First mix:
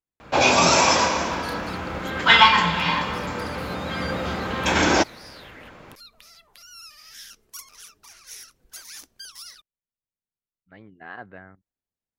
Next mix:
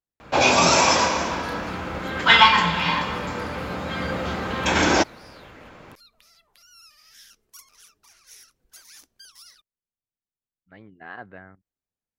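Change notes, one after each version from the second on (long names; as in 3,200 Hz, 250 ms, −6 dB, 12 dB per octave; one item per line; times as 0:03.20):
second sound −7.0 dB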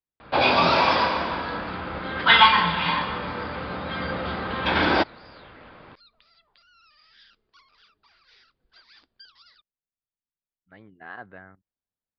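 master: add Chebyshev low-pass with heavy ripple 4,900 Hz, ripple 3 dB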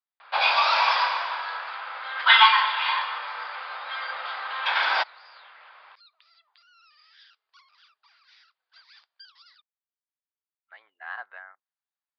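speech +4.5 dB
master: add high-pass filter 820 Hz 24 dB per octave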